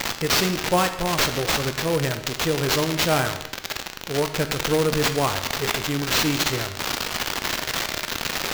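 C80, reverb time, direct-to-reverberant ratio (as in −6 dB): 12.5 dB, 1.0 s, 8.0 dB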